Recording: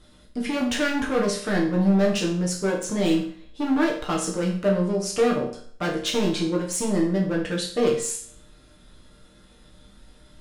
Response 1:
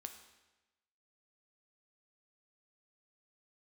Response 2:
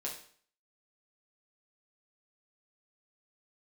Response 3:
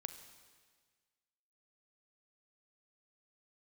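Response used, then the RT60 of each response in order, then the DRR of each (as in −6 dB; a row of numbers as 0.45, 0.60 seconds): 2; 1.1, 0.50, 1.6 seconds; 6.0, −3.0, 8.5 decibels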